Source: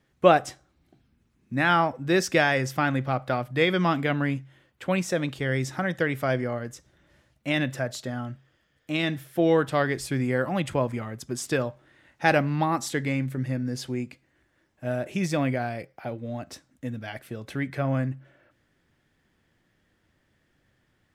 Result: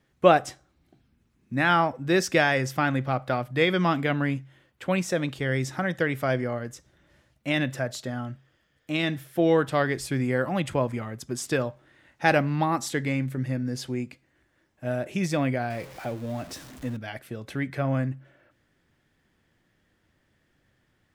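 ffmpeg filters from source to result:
-filter_complex "[0:a]asettb=1/sr,asplit=3[s0][s1][s2];[s0]atrim=end=15.704[s3];[s1]atrim=start=15.7:end=16.97,asetpts=PTS-STARTPTS,afade=t=in:d=0.004:c=qsin,afade=t=out:st=1.266:d=0.004:c=qsin,aeval=exprs='val(0)+0.5*0.01*sgn(val(0))':c=same[s4];[s2]atrim=start=16.966[s5];[s3][s4]acrossfade=d=0.004:c1=hsin:c2=qsin[s6];[s6][s5]acrossfade=d=0.004:c1=qsin:c2=hsin"

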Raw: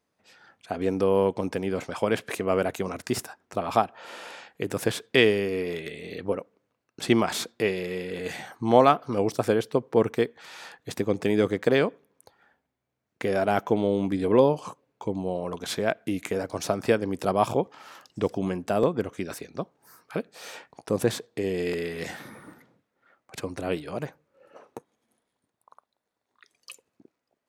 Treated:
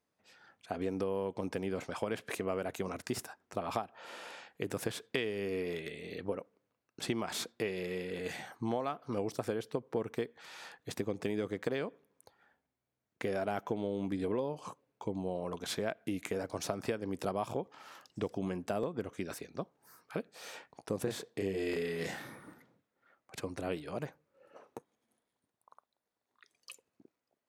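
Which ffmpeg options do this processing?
-filter_complex "[0:a]asettb=1/sr,asplit=3[s0][s1][s2];[s0]atrim=end=21.034[s3];[s1]atrim=start=21.03:end=22.36,asetpts=PTS-STARTPTS,afade=t=in:d=0.004:c=qsin,afade=t=out:st=1.326:d=0.004:c=qsin,asplit=2[s4][s5];[s5]adelay=31,volume=0.794[s6];[s4][s6]amix=inputs=2:normalize=0,atrim=end_sample=58653[s7];[s2]atrim=start=22.356[s8];[s3][s7]acrossfade=d=0.004:c1=hsin:c2=qsin[s9];[s9][s8]acrossfade=d=0.004:c1=qsin:c2=hsin,acompressor=threshold=0.0631:ratio=10,volume=0.501"

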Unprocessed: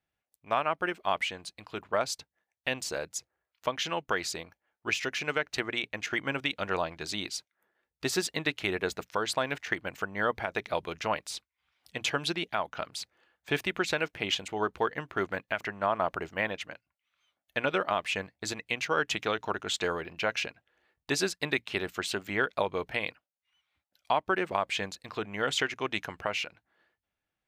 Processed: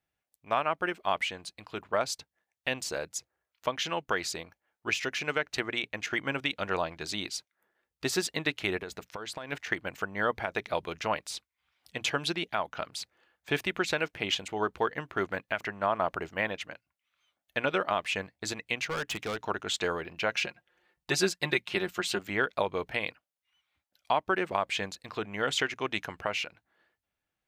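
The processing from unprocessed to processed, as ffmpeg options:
-filter_complex "[0:a]asplit=3[s0][s1][s2];[s0]afade=t=out:st=8.78:d=0.02[s3];[s1]acompressor=threshold=0.0178:ratio=6:attack=3.2:release=140:knee=1:detection=peak,afade=t=in:st=8.78:d=0.02,afade=t=out:st=9.51:d=0.02[s4];[s2]afade=t=in:st=9.51:d=0.02[s5];[s3][s4][s5]amix=inputs=3:normalize=0,asettb=1/sr,asplit=3[s6][s7][s8];[s6]atrim=end=18.864[s9];[s7]atrim=start=18.86:end=19.37,asetpts=PTS-STARTPTS,afade=t=in:d=0.004:c=qsin,afade=t=out:st=0.506:d=0.004:c=qsin,asoftclip=type=hard:threshold=0.0335[s10];[s8]atrim=start=19.366[s11];[s9][s10]acrossfade=d=0.004:c1=hsin:c2=qsin[s12];[s12][s11]acrossfade=d=0.004:c1=qsin:c2=hsin,asettb=1/sr,asplit=3[s13][s14][s15];[s13]atrim=end=20.334[s16];[s14]atrim=start=20.33:end=22.19,asetpts=PTS-STARTPTS,afade=t=in:d=0.004:c=qsin,afade=t=out:st=1.856:d=0.004:c=qsin,aecho=1:1:5.6:0.62,atrim=end_sample=82026[s17];[s15]atrim=start=22.186[s18];[s16][s17]acrossfade=d=0.004:c1=hsin:c2=qsin[s19];[s19][s18]acrossfade=d=0.004:c1=qsin:c2=hsin"

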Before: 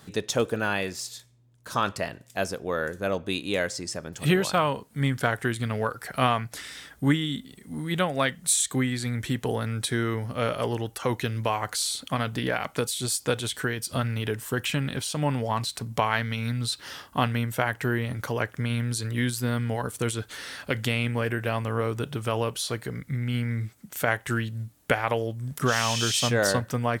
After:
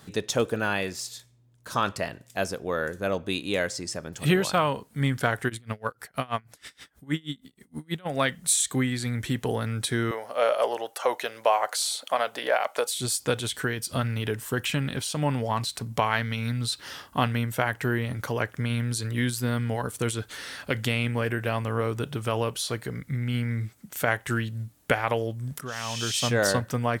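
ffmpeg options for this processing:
-filter_complex "[0:a]asplit=3[s0][s1][s2];[s0]afade=t=out:st=5.48:d=0.02[s3];[s1]aeval=exprs='val(0)*pow(10,-29*(0.5-0.5*cos(2*PI*6.3*n/s))/20)':c=same,afade=t=in:st=5.48:d=0.02,afade=t=out:st=8.05:d=0.02[s4];[s2]afade=t=in:st=8.05:d=0.02[s5];[s3][s4][s5]amix=inputs=3:normalize=0,asettb=1/sr,asplit=3[s6][s7][s8];[s6]atrim=end=10.114[s9];[s7]atrim=start=10.11:end=12.94,asetpts=PTS-STARTPTS,afade=t=in:d=0.004:c=qsin,afade=t=out:st=2.826:d=0.004:c=qsin,highpass=f=610:t=q:w=2.5[s10];[s8]atrim=start=12.936[s11];[s9][s10]acrossfade=d=0.004:c1=hsin:c2=qsin[s12];[s12][s11]acrossfade=d=0.004:c1=qsin:c2=hsin,asplit=2[s13][s14];[s13]atrim=end=25.61,asetpts=PTS-STARTPTS,afade=t=out:st=25.606:d=0.004:c=hsin:silence=0.158489[s15];[s14]atrim=start=25.61,asetpts=PTS-STARTPTS,afade=t=in:d=0.76:silence=0.158489[s16];[s15][s16]concat=n=2:v=0:a=1"

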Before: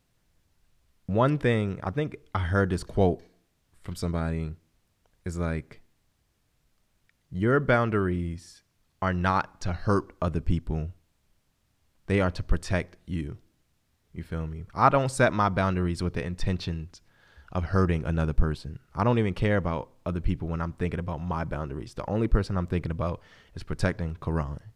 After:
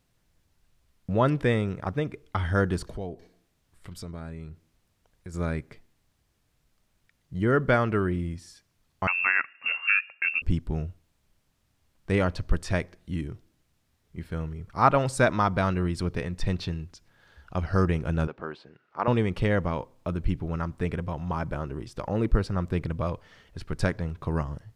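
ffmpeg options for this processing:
-filter_complex "[0:a]asettb=1/sr,asplit=3[s0][s1][s2];[s0]atrim=end=2.964[s3];[s1]atrim=start=2.96:end=5.34,asetpts=PTS-STARTPTS,afade=t=in:d=0.004:c=qsin,afade=t=out:st=2.376:d=0.004:c=qsin,acompressor=threshold=0.00891:ratio=2:attack=3.2:release=140:knee=1:detection=peak[s4];[s2]atrim=start=5.336[s5];[s3][s4]acrossfade=d=0.004:c1=hsin:c2=qsin[s6];[s6][s5]acrossfade=d=0.004:c1=qsin:c2=hsin,asettb=1/sr,asplit=3[s7][s8][s9];[s7]atrim=end=9.074[s10];[s8]atrim=start=9.07:end=10.42,asetpts=PTS-STARTPTS,afade=t=in:d=0.004:c=qsin,afade=t=out:st=1.346:d=0.004:c=qsin,lowpass=f=2400:t=q:w=0.5098,lowpass=f=2400:t=q:w=0.6013,lowpass=f=2400:t=q:w=0.9,lowpass=f=2400:t=q:w=2.563,afreqshift=-2800[s11];[s9]atrim=start=10.416[s12];[s10][s11]acrossfade=d=0.004:c1=hsin:c2=qsin[s13];[s13][s12]acrossfade=d=0.004:c1=qsin:c2=hsin,asettb=1/sr,asplit=3[s14][s15][s16];[s14]atrim=end=18.274[s17];[s15]atrim=start=18.27:end=19.08,asetpts=PTS-STARTPTS,afade=t=in:d=0.004:c=qsin,afade=t=out:st=0.806:d=0.004:c=qsin,highpass=400,lowpass=2900[s18];[s16]atrim=start=19.076[s19];[s17][s18]acrossfade=d=0.004:c1=hsin:c2=qsin[s20];[s20][s19]acrossfade=d=0.004:c1=qsin:c2=hsin"

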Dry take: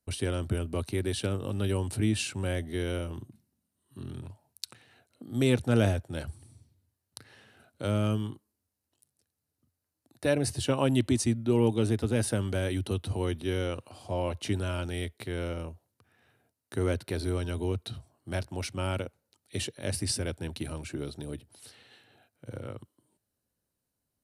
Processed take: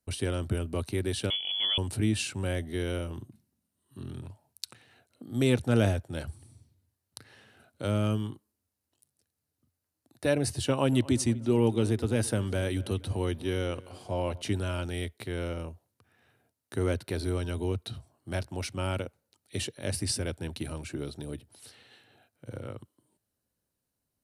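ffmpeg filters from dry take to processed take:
-filter_complex "[0:a]asettb=1/sr,asplit=3[s0][s1][s2];[s0]atrim=end=1.304[s3];[s1]atrim=start=1.3:end=1.78,asetpts=PTS-STARTPTS,afade=t=in:d=0.004:c=qsin,afade=t=out:st=0.476:d=0.004:c=qsin,lowpass=f=3000:t=q:w=0.5098,lowpass=f=3000:t=q:w=0.6013,lowpass=f=3000:t=q:w=0.9,lowpass=f=3000:t=q:w=2.563,afreqshift=-3500[s4];[s2]atrim=start=1.776[s5];[s3][s4]acrossfade=d=0.004:c1=hsin:c2=qsin[s6];[s6][s5]acrossfade=d=0.004:c1=qsin:c2=hsin,asettb=1/sr,asplit=3[s7][s8][s9];[s7]atrim=end=10.644[s10];[s8]atrim=start=10.64:end=14.42,asetpts=PTS-STARTPTS,afade=t=in:d=0.004:c=qsin,afade=t=out:st=3.776:d=0.004:c=qsin,asplit=2[s11][s12];[s12]adelay=238,lowpass=f=3300:p=1,volume=0.0944,asplit=2[s13][s14];[s14]adelay=238,lowpass=f=3300:p=1,volume=0.54,asplit=2[s15][s16];[s16]adelay=238,lowpass=f=3300:p=1,volume=0.54,asplit=2[s17][s18];[s18]adelay=238,lowpass=f=3300:p=1,volume=0.54[s19];[s11][s13][s15][s17][s19]amix=inputs=5:normalize=0,atrim=end_sample=166698[s20];[s9]atrim=start=14.416[s21];[s10][s20]acrossfade=d=0.004:c1=hsin:c2=qsin[s22];[s22][s21]acrossfade=d=0.004:c1=qsin:c2=hsin"

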